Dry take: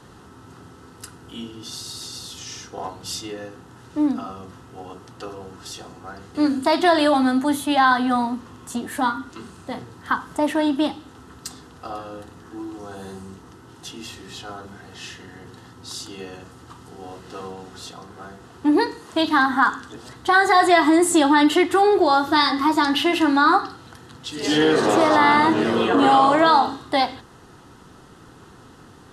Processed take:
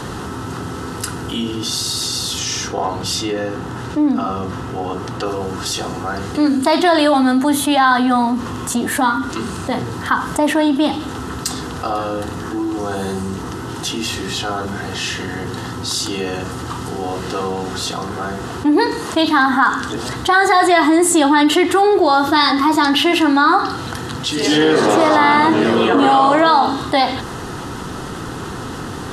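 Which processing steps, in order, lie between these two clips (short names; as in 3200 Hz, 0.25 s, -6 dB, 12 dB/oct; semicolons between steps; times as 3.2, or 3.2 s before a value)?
2.68–5.26 high shelf 5100 Hz -7 dB; fast leveller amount 50%; gain +1.5 dB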